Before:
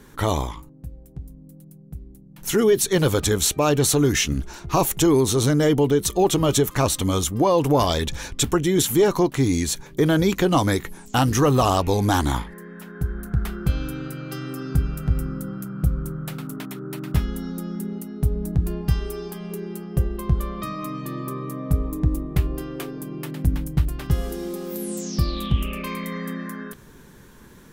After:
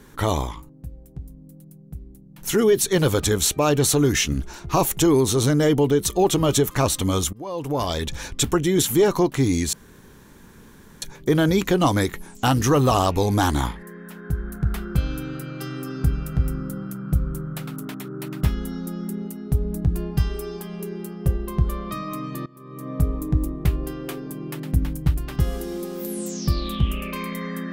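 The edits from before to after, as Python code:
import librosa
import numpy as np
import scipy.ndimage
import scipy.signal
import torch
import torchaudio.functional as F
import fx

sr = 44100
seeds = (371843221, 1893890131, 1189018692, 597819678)

y = fx.edit(x, sr, fx.fade_in_from(start_s=7.33, length_s=0.93, floor_db=-24.0),
    fx.insert_room_tone(at_s=9.73, length_s=1.29),
    fx.fade_in_from(start_s=21.17, length_s=0.45, curve='qua', floor_db=-20.5), tone=tone)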